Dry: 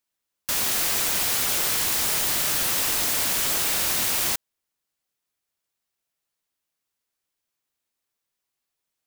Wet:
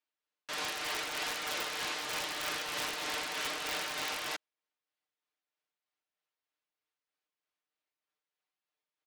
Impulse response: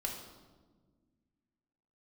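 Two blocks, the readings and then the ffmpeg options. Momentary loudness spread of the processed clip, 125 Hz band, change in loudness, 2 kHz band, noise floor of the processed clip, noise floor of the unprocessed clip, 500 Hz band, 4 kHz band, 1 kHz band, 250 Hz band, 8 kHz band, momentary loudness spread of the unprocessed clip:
3 LU, -16.0 dB, -14.0 dB, -6.0 dB, under -85 dBFS, -83 dBFS, -6.5 dB, -9.0 dB, -5.5 dB, -10.0 dB, -17.5 dB, 3 LU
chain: -af "asoftclip=type=tanh:threshold=0.237,highpass=330,lowpass=3600,aecho=1:1:6.6:0.89,aeval=exprs='(mod(10.6*val(0)+1,2)-1)/10.6':c=same,tremolo=f=3.2:d=0.33,volume=0.531"

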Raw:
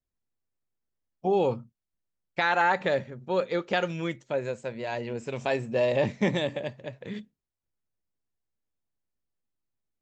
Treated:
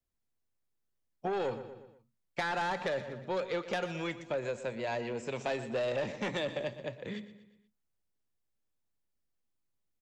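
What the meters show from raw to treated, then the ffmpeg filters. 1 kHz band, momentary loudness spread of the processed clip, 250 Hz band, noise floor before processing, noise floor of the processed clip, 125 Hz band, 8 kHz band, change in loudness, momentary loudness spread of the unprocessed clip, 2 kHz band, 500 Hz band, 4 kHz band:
-7.5 dB, 10 LU, -7.5 dB, under -85 dBFS, -81 dBFS, -8.5 dB, no reading, -7.5 dB, 14 LU, -7.5 dB, -6.5 dB, -5.0 dB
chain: -filter_complex "[0:a]asoftclip=type=tanh:threshold=0.0794,aecho=1:1:120|240|360|480:0.178|0.0836|0.0393|0.0185,acrossover=split=190|500|3300[s0][s1][s2][s3];[s0]acompressor=threshold=0.00355:ratio=4[s4];[s1]acompressor=threshold=0.01:ratio=4[s5];[s2]acompressor=threshold=0.0224:ratio=4[s6];[s3]acompressor=threshold=0.00501:ratio=4[s7];[s4][s5][s6][s7]amix=inputs=4:normalize=0"

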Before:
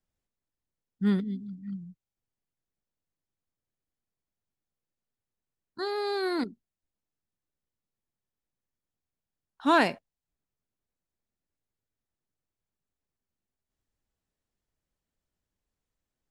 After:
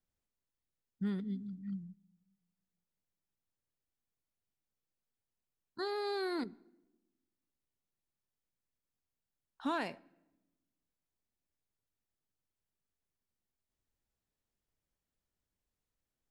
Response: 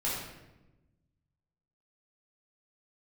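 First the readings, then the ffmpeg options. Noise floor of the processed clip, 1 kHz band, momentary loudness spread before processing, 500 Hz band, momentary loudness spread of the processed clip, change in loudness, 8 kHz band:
under -85 dBFS, -11.5 dB, 16 LU, -8.5 dB, 10 LU, -10.0 dB, -11.0 dB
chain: -filter_complex "[0:a]acompressor=threshold=0.0355:ratio=6,asplit=2[s0][s1];[1:a]atrim=start_sample=2205[s2];[s1][s2]afir=irnorm=-1:irlink=0,volume=0.0355[s3];[s0][s3]amix=inputs=2:normalize=0,volume=0.631"

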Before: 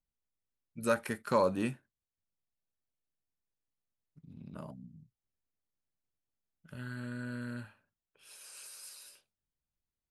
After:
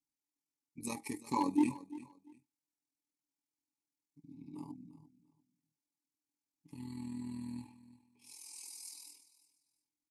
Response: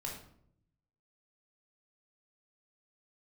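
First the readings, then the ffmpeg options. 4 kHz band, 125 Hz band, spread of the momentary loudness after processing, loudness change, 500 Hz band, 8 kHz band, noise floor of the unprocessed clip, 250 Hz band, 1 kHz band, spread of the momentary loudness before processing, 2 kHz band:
-3.0 dB, -8.0 dB, 23 LU, -4.0 dB, -15.0 dB, +1.0 dB, under -85 dBFS, +2.5 dB, -2.5 dB, 23 LU, -12.0 dB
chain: -filter_complex "[0:a]lowshelf=f=130:g=6.5,aecho=1:1:7.1:0.9,aexciter=amount=14.6:drive=5.9:freq=4600,asplit=3[s0][s1][s2];[s0]bandpass=f=300:t=q:w=8,volume=1[s3];[s1]bandpass=f=870:t=q:w=8,volume=0.501[s4];[s2]bandpass=f=2240:t=q:w=8,volume=0.355[s5];[s3][s4][s5]amix=inputs=3:normalize=0,asoftclip=type=hard:threshold=0.0316,tremolo=f=41:d=0.571,asuperstop=centerf=1400:order=8:qfactor=3.4,aecho=1:1:345|690:0.141|0.0325,volume=2.82"

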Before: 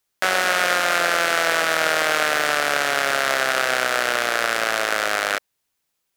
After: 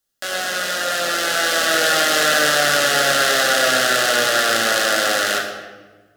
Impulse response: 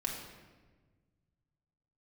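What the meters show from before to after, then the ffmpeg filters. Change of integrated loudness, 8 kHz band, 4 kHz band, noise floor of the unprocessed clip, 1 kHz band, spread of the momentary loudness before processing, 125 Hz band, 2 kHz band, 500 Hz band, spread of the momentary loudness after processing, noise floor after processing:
+3.5 dB, +7.0 dB, +6.5 dB, -76 dBFS, +1.0 dB, 3 LU, +6.0 dB, +2.0 dB, +3.5 dB, 7 LU, -57 dBFS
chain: -filter_complex "[0:a]equalizer=f=970:t=o:w=0.28:g=-13.5,acrossover=split=2500[s0][s1];[s0]alimiter=limit=0.133:level=0:latency=1:release=15[s2];[s2][s1]amix=inputs=2:normalize=0,equalizer=f=2300:t=o:w=0.25:g=-13.5,dynaudnorm=f=540:g=5:m=3.76[s3];[1:a]atrim=start_sample=2205,asetrate=48510,aresample=44100[s4];[s3][s4]afir=irnorm=-1:irlink=0"

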